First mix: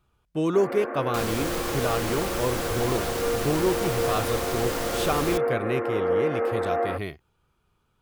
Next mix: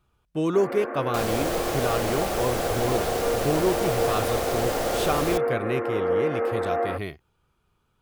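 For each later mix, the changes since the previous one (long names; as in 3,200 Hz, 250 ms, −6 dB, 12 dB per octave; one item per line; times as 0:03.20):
second sound: add flat-topped bell 580 Hz +12.5 dB 1.1 octaves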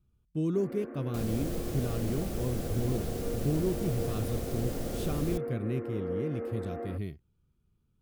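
master: add drawn EQ curve 220 Hz 0 dB, 830 Hz −20 dB, 13,000 Hz −9 dB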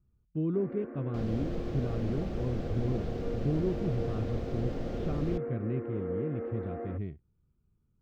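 speech: add high-frequency loss of the air 380 metres
master: add high-frequency loss of the air 210 metres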